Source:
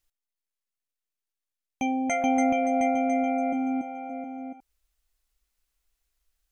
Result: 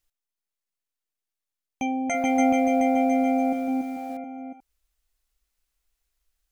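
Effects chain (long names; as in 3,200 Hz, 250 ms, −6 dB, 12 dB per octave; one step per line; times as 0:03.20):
0:01.99–0:04.17: feedback echo at a low word length 153 ms, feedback 35%, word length 8 bits, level −6 dB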